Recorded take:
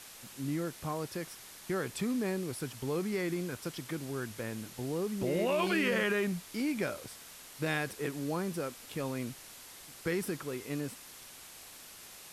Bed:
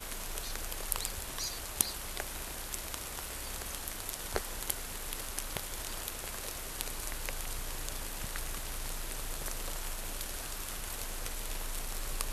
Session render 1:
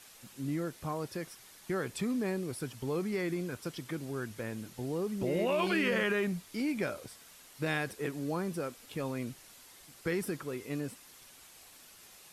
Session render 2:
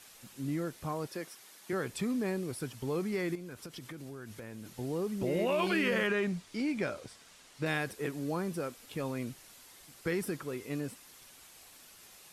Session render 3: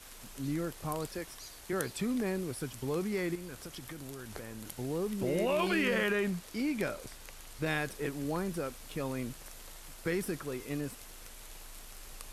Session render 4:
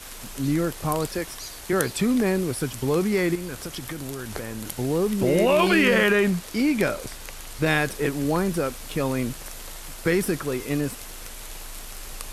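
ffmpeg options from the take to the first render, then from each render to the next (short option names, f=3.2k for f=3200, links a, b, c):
-af "afftdn=nr=6:nf=-51"
-filter_complex "[0:a]asettb=1/sr,asplit=3[a][b][c];[a]atrim=end=1.074[d];[b]atrim=start=1.07:end=1.73,asetpts=PTS-STARTPTS,afade=t=in:d=0.004:c=qsin,afade=t=out:st=0.656:d=0.004:c=qsin,highpass=220[e];[c]atrim=start=1.726[f];[d][e]acrossfade=d=0.004:c1=hsin:c2=qsin[g];[g][f]acrossfade=d=0.004:c1=qsin:c2=hsin,asettb=1/sr,asplit=3[h][i][j];[h]atrim=end=3.354[k];[i]atrim=start=3.35:end=4.7,asetpts=PTS-STARTPTS,afade=t=in:d=0.004:c=qsin,afade=t=out:st=1.346:d=0.004:c=qsin,acompressor=threshold=-40dB:ratio=12:attack=3.2:release=140:knee=1:detection=peak[l];[j]atrim=start=4.696[m];[k][l]acrossfade=d=0.004:c1=hsin:c2=qsin[n];[n][m]acrossfade=d=0.004:c1=qsin:c2=hsin,asettb=1/sr,asplit=3[o][p][q];[o]atrim=end=6.074[r];[p]atrim=start=6.07:end=7.66,asetpts=PTS-STARTPTS,afade=t=in:d=0.004:c=qsin,afade=t=out:st=1.586:d=0.004:c=qsin,lowpass=8k[s];[q]atrim=start=7.656[t];[r][s]acrossfade=d=0.004:c1=hsin:c2=qsin[u];[u][t]acrossfade=d=0.004:c1=qsin:c2=hsin"
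-filter_complex "[1:a]volume=-12dB[a];[0:a][a]amix=inputs=2:normalize=0"
-af "volume=11dB"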